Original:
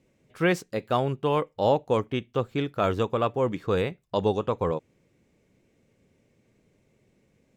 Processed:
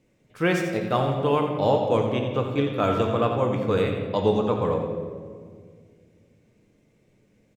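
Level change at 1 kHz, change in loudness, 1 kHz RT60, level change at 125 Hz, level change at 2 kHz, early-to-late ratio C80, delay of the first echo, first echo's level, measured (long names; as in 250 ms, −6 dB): +2.5 dB, +3.0 dB, 1.6 s, +4.0 dB, +2.0 dB, 4.5 dB, 87 ms, −9.0 dB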